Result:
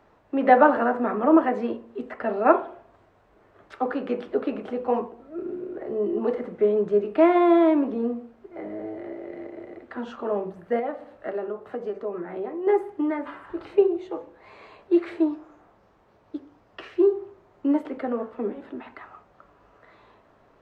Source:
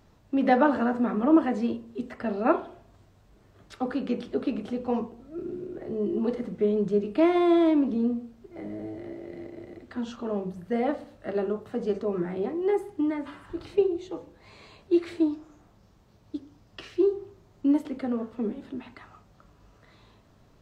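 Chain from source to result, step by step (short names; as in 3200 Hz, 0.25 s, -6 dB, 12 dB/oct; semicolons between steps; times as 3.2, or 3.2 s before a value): 10.79–12.67 compressor 3:1, threshold -33 dBFS, peak gain reduction 9 dB; three-band isolator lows -15 dB, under 340 Hz, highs -17 dB, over 2400 Hz; gain +7 dB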